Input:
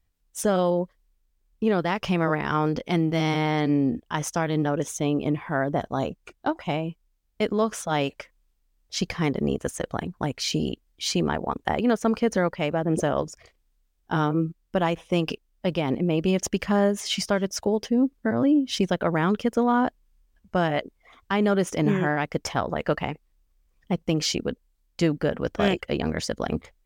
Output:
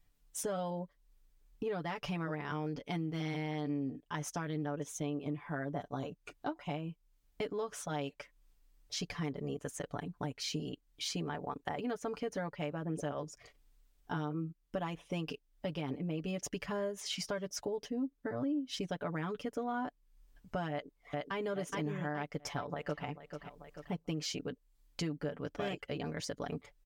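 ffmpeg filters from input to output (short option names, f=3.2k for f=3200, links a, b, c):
-filter_complex "[0:a]asplit=2[a][b];[b]afade=t=in:st=20.71:d=0.01,afade=t=out:st=21.38:d=0.01,aecho=0:1:420|840|1260|1680|2100:0.841395|0.336558|0.134623|0.0538493|0.0215397[c];[a][c]amix=inputs=2:normalize=0,asplit=2[d][e];[e]afade=t=in:st=22.35:d=0.01,afade=t=out:st=23.04:d=0.01,aecho=0:1:440|880|1320:0.141254|0.0423761|0.0127128[f];[d][f]amix=inputs=2:normalize=0,aecho=1:1:6.9:0.73,acompressor=threshold=-43dB:ratio=2.5"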